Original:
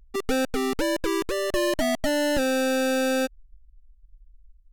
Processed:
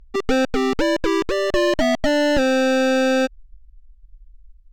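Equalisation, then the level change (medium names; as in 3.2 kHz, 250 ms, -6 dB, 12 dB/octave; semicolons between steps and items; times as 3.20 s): boxcar filter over 4 samples; +6.0 dB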